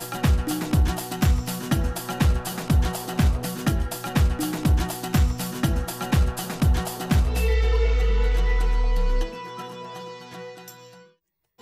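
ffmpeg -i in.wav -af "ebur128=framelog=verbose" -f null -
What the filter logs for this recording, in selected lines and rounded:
Integrated loudness:
  I:         -24.2 LUFS
  Threshold: -35.0 LUFS
Loudness range:
  LRA:         3.5 LU
  Threshold: -44.6 LUFS
  LRA low:   -27.1 LUFS
  LRA high:  -23.6 LUFS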